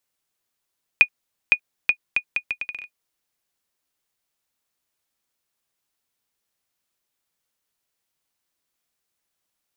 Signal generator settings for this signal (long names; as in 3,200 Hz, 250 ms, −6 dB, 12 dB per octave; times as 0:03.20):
bouncing ball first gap 0.51 s, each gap 0.73, 2,460 Hz, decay 75 ms −1.5 dBFS